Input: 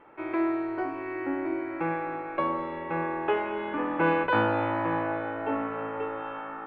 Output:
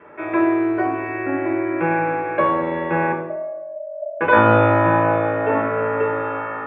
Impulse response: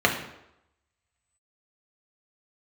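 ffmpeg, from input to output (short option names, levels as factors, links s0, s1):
-filter_complex "[0:a]asettb=1/sr,asplit=3[s0][s1][s2];[s0]atrim=end=3.124[s3];[s1]atrim=start=3.12:end=4.21,asetpts=PTS-STARTPTS,afade=t=in:d=0.004:c=qsin,afade=t=out:st=1.086:d=0.004:c=qsin,asuperpass=centerf=610:order=12:qfactor=6.8[s4];[s2]atrim=start=4.206[s5];[s3][s4]acrossfade=d=0.004:c1=hsin:c2=qsin[s6];[s6][s5]acrossfade=d=0.004:c1=qsin:c2=hsin[s7];[1:a]atrim=start_sample=2205,asetrate=37485,aresample=44100[s8];[s7][s8]afir=irnorm=-1:irlink=0,volume=0.422"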